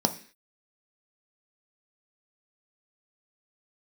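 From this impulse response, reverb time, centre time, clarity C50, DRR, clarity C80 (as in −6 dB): 0.45 s, 7 ms, 14.5 dB, 6.5 dB, 19.0 dB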